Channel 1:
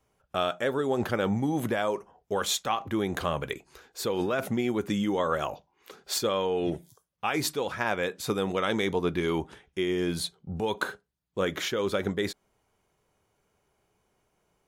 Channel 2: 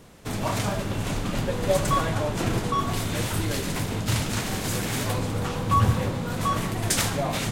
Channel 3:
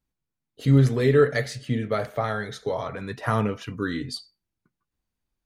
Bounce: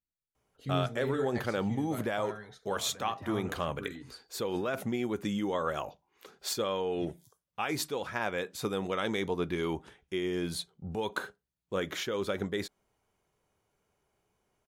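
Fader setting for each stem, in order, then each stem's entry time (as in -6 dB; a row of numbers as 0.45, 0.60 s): -4.5 dB, off, -16.0 dB; 0.35 s, off, 0.00 s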